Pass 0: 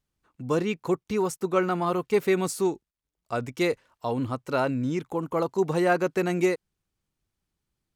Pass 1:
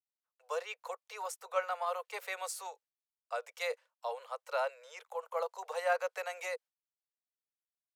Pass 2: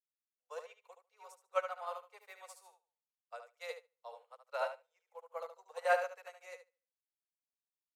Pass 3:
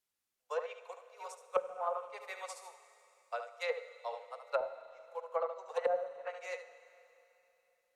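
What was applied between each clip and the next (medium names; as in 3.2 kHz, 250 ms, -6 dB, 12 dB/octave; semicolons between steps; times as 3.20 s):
gate with hold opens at -51 dBFS; steep high-pass 480 Hz 96 dB/octave; trim -7 dB
on a send: feedback delay 73 ms, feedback 39%, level -3.5 dB; on the sum: upward expansion 2.5:1, over -50 dBFS; trim +1.5 dB
low-pass that closes with the level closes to 310 Hz, closed at -34 dBFS; Schroeder reverb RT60 3.2 s, combs from 33 ms, DRR 12.5 dB; trim +9 dB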